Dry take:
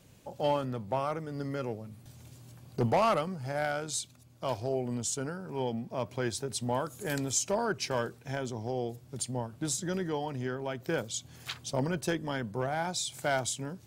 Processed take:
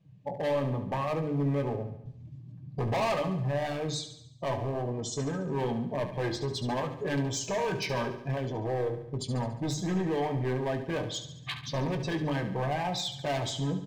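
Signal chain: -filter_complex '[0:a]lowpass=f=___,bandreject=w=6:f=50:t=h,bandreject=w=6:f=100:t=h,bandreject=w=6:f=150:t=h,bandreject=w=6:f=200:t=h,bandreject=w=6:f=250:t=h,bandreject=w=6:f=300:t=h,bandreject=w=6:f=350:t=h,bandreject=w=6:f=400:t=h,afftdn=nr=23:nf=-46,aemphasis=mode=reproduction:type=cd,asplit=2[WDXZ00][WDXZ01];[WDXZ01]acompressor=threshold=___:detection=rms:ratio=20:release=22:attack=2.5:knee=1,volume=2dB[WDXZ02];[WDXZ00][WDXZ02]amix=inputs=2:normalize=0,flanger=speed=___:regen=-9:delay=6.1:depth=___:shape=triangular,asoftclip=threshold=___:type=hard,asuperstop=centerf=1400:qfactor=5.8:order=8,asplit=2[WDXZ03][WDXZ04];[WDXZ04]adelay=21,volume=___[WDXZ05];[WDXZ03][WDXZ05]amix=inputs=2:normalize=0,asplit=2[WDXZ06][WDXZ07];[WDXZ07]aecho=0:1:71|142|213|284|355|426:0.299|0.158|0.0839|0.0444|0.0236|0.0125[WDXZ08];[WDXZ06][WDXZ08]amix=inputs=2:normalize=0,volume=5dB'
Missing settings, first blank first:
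4.8k, -40dB, 0.8, 1.5, -32dB, -11dB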